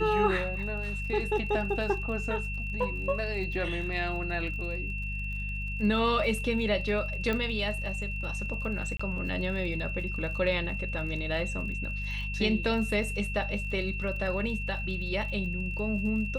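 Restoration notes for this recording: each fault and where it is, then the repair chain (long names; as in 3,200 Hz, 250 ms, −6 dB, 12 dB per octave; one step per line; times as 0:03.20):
surface crackle 44 per second −40 dBFS
mains hum 50 Hz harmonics 4 −35 dBFS
whistle 2,700 Hz −36 dBFS
0:07.33: click −18 dBFS
0:08.97–0:08.99: drop-out 25 ms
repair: click removal
notch filter 2,700 Hz, Q 30
hum removal 50 Hz, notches 4
repair the gap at 0:08.97, 25 ms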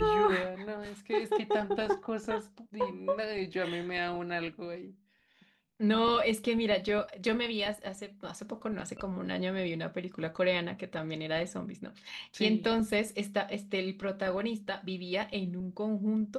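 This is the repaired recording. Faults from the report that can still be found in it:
none of them is left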